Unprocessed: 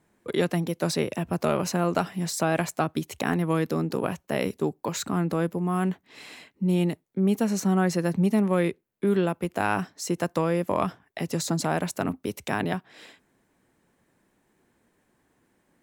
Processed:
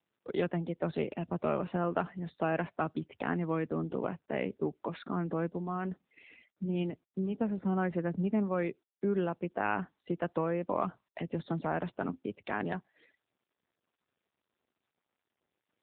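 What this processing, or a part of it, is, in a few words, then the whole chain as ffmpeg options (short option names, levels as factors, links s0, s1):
mobile call with aggressive noise cancelling: -af "highpass=f=130:p=1,afftdn=nr=25:nf=-43,volume=0.531" -ar 8000 -c:a libopencore_amrnb -b:a 7950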